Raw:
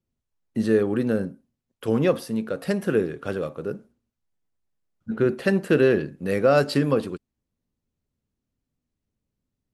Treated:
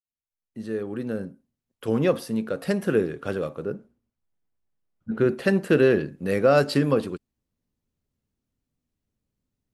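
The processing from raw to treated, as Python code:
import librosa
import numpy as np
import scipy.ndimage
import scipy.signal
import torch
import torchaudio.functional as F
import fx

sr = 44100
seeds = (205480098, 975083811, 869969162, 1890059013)

y = fx.fade_in_head(x, sr, length_s=2.29)
y = fx.high_shelf(y, sr, hz=3400.0, db=-9.5, at=(3.64, 5.15))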